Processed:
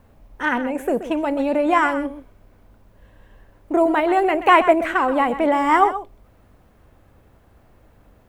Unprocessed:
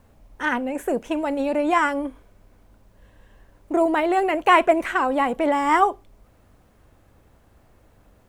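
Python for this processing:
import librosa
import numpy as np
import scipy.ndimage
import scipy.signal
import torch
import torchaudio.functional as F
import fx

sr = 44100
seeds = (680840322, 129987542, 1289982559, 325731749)

p1 = fx.peak_eq(x, sr, hz=7400.0, db=-5.5, octaves=1.7)
p2 = p1 + fx.echo_single(p1, sr, ms=128, db=-12.5, dry=0)
y = F.gain(torch.from_numpy(p2), 2.5).numpy()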